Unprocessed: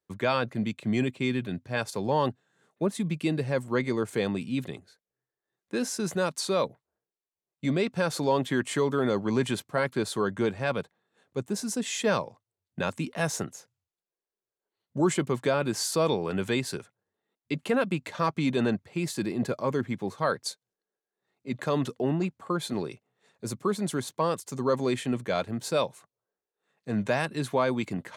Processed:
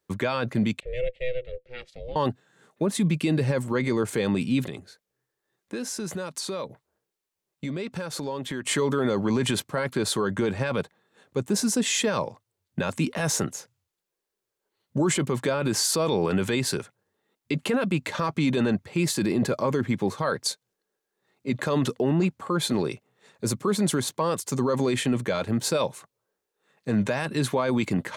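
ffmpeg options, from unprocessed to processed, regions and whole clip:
ffmpeg -i in.wav -filter_complex "[0:a]asettb=1/sr,asplit=3[link_01][link_02][link_03];[link_01]atrim=end=0.804[link_04];[link_02]atrim=start=0.8:end=2.16,asetpts=PTS-STARTPTS,afade=type=in:duration=0.004:curve=qsin,afade=type=out:start_time=1.356:duration=0.004:curve=qsin,asplit=3[link_05][link_06][link_07];[link_05]bandpass=frequency=270:width_type=q:width=8,volume=0dB[link_08];[link_06]bandpass=frequency=2290:width_type=q:width=8,volume=-6dB[link_09];[link_07]bandpass=frequency=3010:width_type=q:width=8,volume=-9dB[link_10];[link_08][link_09][link_10]amix=inputs=3:normalize=0,aeval=exprs='val(0)*sin(2*PI*250*n/s)':channel_layout=same[link_11];[link_03]atrim=start=2.156[link_12];[link_04][link_11]acrossfade=duration=0.004:curve1=hsin:curve2=qsin[link_13];[link_13][link_12]acrossfade=duration=0.004:curve1=qsin:curve2=hsin,asettb=1/sr,asplit=3[link_14][link_15][link_16];[link_14]atrim=end=4.674[link_17];[link_15]atrim=start=4.67:end=8.66,asetpts=PTS-STARTPTS,afade=type=in:duration=0.004:curve=qsin,afade=type=out:start_time=3.986:duration=0.004:curve=qsin,acompressor=threshold=-39dB:ratio=4:attack=3.2:release=140:knee=1:detection=peak,asoftclip=type=hard:threshold=-30dB[link_18];[link_16]atrim=start=8.656[link_19];[link_17][link_18]acrossfade=duration=0.004:curve1=hsin:curve2=qsin[link_20];[link_20][link_19]acrossfade=duration=0.004:curve1=qsin:curve2=hsin,bandreject=frequency=700:width=13,alimiter=limit=-24dB:level=0:latency=1:release=33,volume=8.5dB" out.wav

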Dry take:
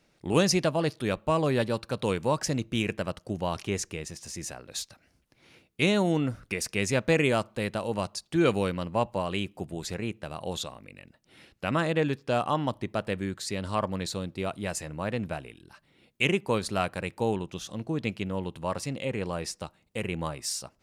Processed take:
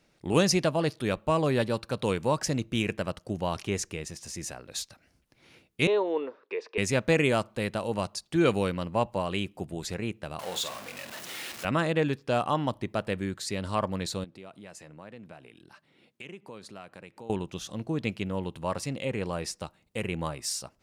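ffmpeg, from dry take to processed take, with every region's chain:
ffmpeg -i in.wav -filter_complex "[0:a]asettb=1/sr,asplit=3[link_01][link_02][link_03];[link_01]atrim=end=5.874[link_04];[link_02]atrim=start=5.87:end=6.78,asetpts=PTS-STARTPTS,afade=type=in:duration=0.004:curve=qsin,afade=type=out:start_time=0.906:duration=0.004:curve=qsin,highpass=frequency=400:width=0.5412,highpass=frequency=400:width=1.3066,equalizer=frequency=430:width_type=q:width=4:gain=9,equalizer=frequency=680:width_type=q:width=4:gain=-5,equalizer=frequency=1000:width_type=q:width=4:gain=5,equalizer=frequency=1400:width_type=q:width=4:gain=-9,equalizer=frequency=2100:width_type=q:width=4:gain=-8,equalizer=frequency=3000:width_type=q:width=4:gain=-7,lowpass=frequency=3200:width=0.5412,lowpass=frequency=3200:width=1.3066,bandreject=frequency=730:width=12[link_05];[link_03]atrim=start=6.776[link_06];[link_04][link_05]acrossfade=duration=0.004:curve1=hsin:curve2=qsin[link_07];[link_07][link_06]acrossfade=duration=0.004:curve1=qsin:curve2=hsin,asettb=1/sr,asplit=3[link_08][link_09][link_10];[link_08]atrim=end=10.394[link_11];[link_09]atrim=start=10.39:end=11.65,asetpts=PTS-STARTPTS,afade=type=in:duration=0.004:curve=qsin,afade=type=out:start_time=1.256:duration=0.004:curve=qsin,aeval=exprs='val(0)+0.5*0.0237*sgn(val(0))':channel_layout=same,highpass=frequency=780:poles=1,asplit=2[link_12][link_13];[link_13]adelay=49,volume=-9dB[link_14];[link_12][link_14]amix=inputs=2:normalize=0,atrim=end_sample=55566[link_15];[link_10]atrim=start=11.646[link_16];[link_11][link_15]acrossfade=duration=0.004:curve1=hsin:curve2=qsin[link_17];[link_17][link_16]acrossfade=duration=0.004:curve1=qsin:curve2=hsin,asettb=1/sr,asplit=3[link_18][link_19][link_20];[link_18]atrim=end=14.244[link_21];[link_19]atrim=start=14.24:end=17.3,asetpts=PTS-STARTPTS,afade=type=in:duration=0.004:curve=qsin,afade=type=out:start_time=3.056:duration=0.004:curve=qsin,highshelf=frequency=8100:gain=-7.5,acompressor=threshold=-46dB:ratio=3:attack=3.2:release=140:knee=1:detection=peak,highpass=140[link_22];[link_20]atrim=start=17.296[link_23];[link_21][link_22]acrossfade=duration=0.004:curve1=hsin:curve2=qsin[link_24];[link_24][link_23]acrossfade=duration=0.004:curve1=qsin:curve2=hsin" out.wav

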